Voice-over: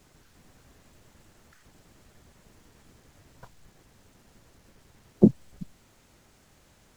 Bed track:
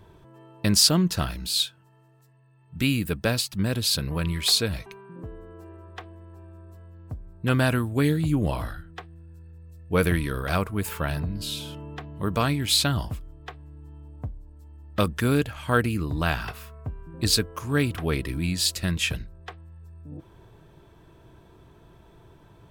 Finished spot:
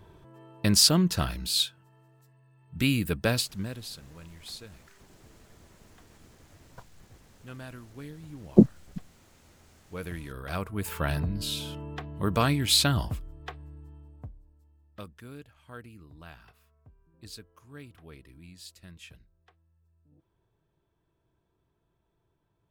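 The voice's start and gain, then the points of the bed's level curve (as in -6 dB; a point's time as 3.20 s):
3.35 s, +1.0 dB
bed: 3.39 s -1.5 dB
4.01 s -21 dB
9.66 s -21 dB
11.09 s -0.5 dB
13.66 s -0.5 dB
15.23 s -23 dB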